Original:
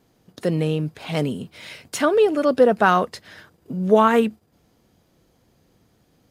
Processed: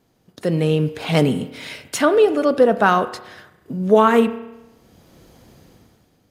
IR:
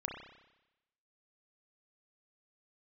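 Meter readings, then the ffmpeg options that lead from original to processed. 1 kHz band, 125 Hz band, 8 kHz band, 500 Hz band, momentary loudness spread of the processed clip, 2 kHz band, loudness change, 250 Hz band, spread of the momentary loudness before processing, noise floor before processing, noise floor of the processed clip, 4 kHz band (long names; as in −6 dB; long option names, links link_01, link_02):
+1.5 dB, +4.0 dB, +3.5 dB, +2.5 dB, 17 LU, +2.0 dB, +2.0 dB, +3.0 dB, 17 LU, −63 dBFS, −61 dBFS, +3.5 dB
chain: -filter_complex "[0:a]dynaudnorm=framelen=120:gausssize=11:maxgain=14.5dB,asplit=2[link_01][link_02];[1:a]atrim=start_sample=2205[link_03];[link_02][link_03]afir=irnorm=-1:irlink=0,volume=-8dB[link_04];[link_01][link_04]amix=inputs=2:normalize=0,volume=-4dB"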